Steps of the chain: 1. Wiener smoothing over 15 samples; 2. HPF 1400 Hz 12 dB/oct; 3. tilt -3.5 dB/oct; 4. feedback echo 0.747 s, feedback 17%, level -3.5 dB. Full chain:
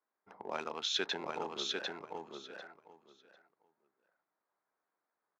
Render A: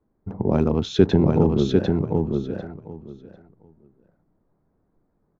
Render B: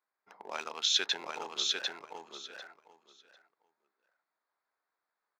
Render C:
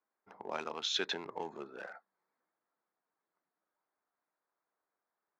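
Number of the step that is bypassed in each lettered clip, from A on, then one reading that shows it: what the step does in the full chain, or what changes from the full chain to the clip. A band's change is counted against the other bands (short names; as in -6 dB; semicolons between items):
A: 2, 125 Hz band +30.0 dB; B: 3, 8 kHz band +9.5 dB; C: 4, crest factor change +1.5 dB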